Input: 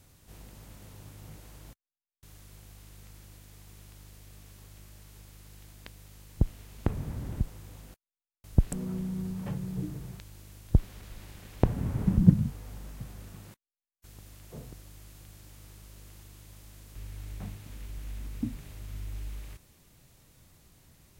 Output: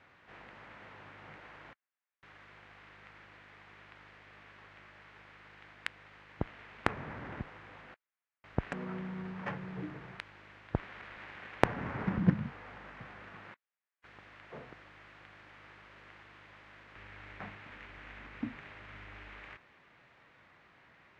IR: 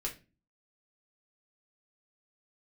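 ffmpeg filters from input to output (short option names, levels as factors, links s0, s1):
-af "bandpass=f=1900:t=q:w=1.5:csg=0,adynamicsmooth=sensitivity=7:basefreq=1900,volume=6.68"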